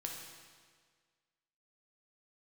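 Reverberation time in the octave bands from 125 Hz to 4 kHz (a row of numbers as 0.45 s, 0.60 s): 1.7 s, 1.7 s, 1.7 s, 1.7 s, 1.6 s, 1.6 s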